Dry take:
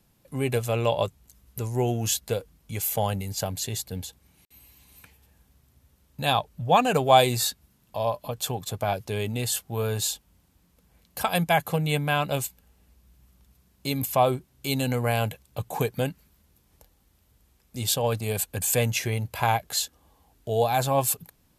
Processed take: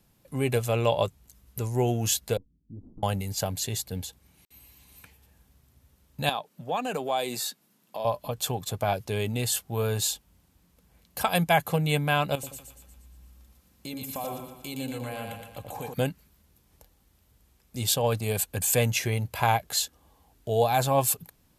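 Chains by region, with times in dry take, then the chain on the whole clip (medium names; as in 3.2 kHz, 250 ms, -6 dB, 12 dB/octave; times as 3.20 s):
2.37–3.03 s: comb filter that takes the minimum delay 0.84 ms + four-pole ladder low-pass 330 Hz, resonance 50%
6.29–8.05 s: high-pass 180 Hz 24 dB/octave + compression 2:1, threshold -32 dBFS
12.35–15.94 s: comb 3.8 ms, depth 35% + compression 3:1, threshold -37 dBFS + two-band feedback delay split 820 Hz, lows 82 ms, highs 118 ms, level -3.5 dB
whole clip: none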